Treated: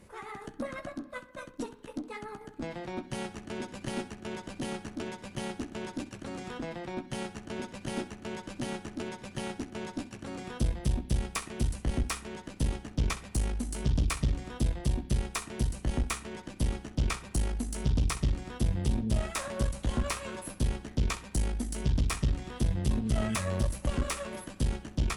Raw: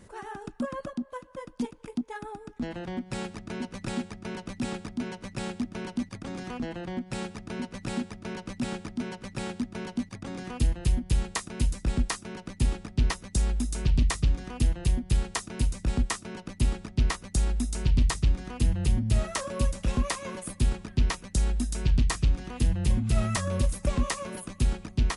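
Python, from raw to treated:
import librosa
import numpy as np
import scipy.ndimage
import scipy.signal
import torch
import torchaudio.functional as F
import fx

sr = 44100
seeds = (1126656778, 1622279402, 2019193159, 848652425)

y = fx.rev_spring(x, sr, rt60_s=1.0, pass_ms=(31,), chirp_ms=50, drr_db=14.0)
y = fx.formant_shift(y, sr, semitones=3)
y = fx.room_early_taps(y, sr, ms=(14, 65), db=(-8.0, -16.0))
y = fx.tube_stage(y, sr, drive_db=20.0, bias=0.65)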